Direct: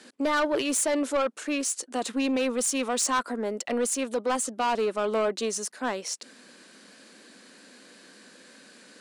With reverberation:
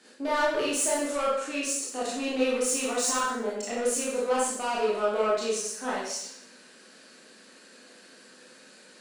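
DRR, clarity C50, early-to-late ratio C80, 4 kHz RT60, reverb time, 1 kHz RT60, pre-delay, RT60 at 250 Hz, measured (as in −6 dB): −7.5 dB, 0.0 dB, 4.5 dB, 0.70 s, 0.65 s, 0.70 s, 20 ms, 0.70 s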